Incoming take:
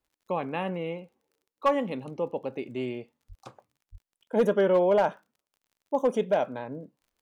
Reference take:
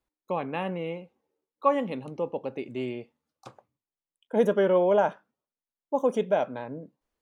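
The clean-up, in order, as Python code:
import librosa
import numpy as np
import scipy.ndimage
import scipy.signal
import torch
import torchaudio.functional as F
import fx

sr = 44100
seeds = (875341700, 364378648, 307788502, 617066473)

y = fx.fix_declip(x, sr, threshold_db=-15.5)
y = fx.fix_declick_ar(y, sr, threshold=6.5)
y = fx.highpass(y, sr, hz=140.0, slope=24, at=(3.28, 3.4), fade=0.02)
y = fx.highpass(y, sr, hz=140.0, slope=24, at=(3.91, 4.03), fade=0.02)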